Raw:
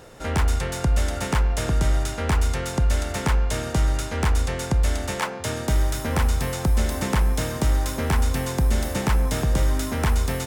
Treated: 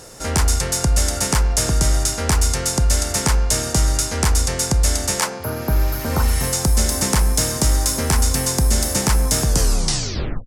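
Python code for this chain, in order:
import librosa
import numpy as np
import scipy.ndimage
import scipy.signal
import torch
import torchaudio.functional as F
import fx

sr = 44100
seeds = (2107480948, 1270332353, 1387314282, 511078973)

y = fx.tape_stop_end(x, sr, length_s=1.0)
y = fx.band_shelf(y, sr, hz=7500.0, db=12.0, octaves=1.7)
y = fx.spec_repair(y, sr, seeds[0], start_s=5.43, length_s=0.99, low_hz=1600.0, high_hz=11000.0, source='both')
y = y * librosa.db_to_amplitude(3.0)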